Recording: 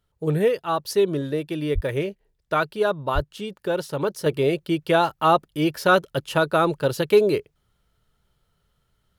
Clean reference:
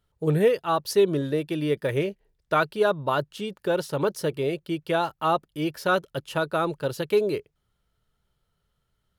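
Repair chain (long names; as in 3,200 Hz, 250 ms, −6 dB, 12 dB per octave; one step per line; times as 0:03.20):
high-pass at the plosives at 0:01.74/0:03.14
level 0 dB, from 0:04.26 −5.5 dB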